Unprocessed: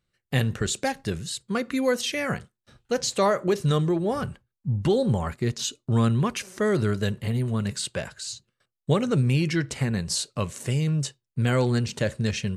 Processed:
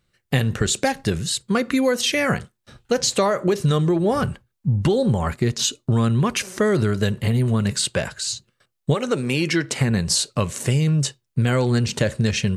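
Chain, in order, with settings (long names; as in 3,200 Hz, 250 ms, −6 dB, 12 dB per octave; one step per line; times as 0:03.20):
0:08.94–0:09.77: high-pass filter 400 Hz → 190 Hz 12 dB per octave
downward compressor, threshold −24 dBFS, peak gain reduction 8 dB
level +8.5 dB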